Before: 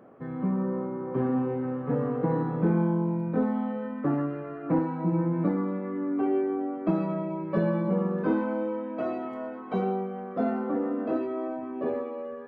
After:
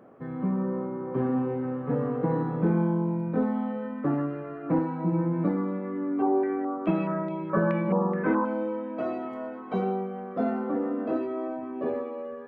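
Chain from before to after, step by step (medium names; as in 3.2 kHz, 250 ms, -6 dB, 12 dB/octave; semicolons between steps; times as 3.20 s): 6.22–8.45 s: step-sequenced low-pass 4.7 Hz 950–3500 Hz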